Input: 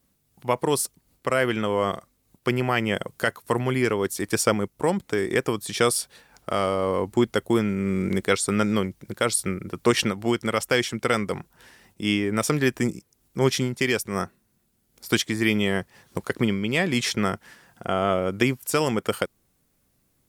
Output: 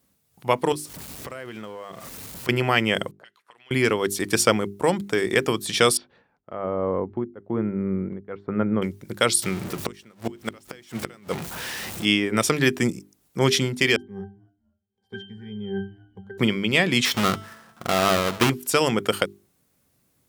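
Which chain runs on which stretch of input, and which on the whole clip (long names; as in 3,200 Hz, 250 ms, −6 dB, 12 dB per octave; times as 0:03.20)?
0:00.72–0:02.49: converter with a step at zero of −34 dBFS + downward compressor 5 to 1, threshold −36 dBFS
0:03.11–0:03.71: envelope filter 450–3,200 Hz, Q 2.9, up, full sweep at −23 dBFS + downward compressor 3 to 1, threshold −53 dBFS
0:05.97–0:08.82: treble cut that deepens with the level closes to 1,700 Hz, closed at −21 dBFS + head-to-tape spacing loss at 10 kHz 41 dB + tremolo along a rectified sine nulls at 1.1 Hz
0:09.42–0:12.05: converter with a step at zero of −21.5 dBFS + power curve on the samples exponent 1.4 + gate with flip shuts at −14 dBFS, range −27 dB
0:13.96–0:16.38: resonances in every octave G, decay 0.3 s + echo with shifted repeats 247 ms, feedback 37%, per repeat −88 Hz, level −23.5 dB
0:17.05–0:18.50: each half-wave held at its own peak + parametric band 1,200 Hz +7.5 dB 0.54 octaves + tuned comb filter 220 Hz, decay 1.1 s, mix 50%
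whole clip: dynamic equaliser 3,300 Hz, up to +5 dB, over −42 dBFS, Q 1.1; high-pass filter 69 Hz; mains-hum notches 50/100/150/200/250/300/350/400 Hz; level +2 dB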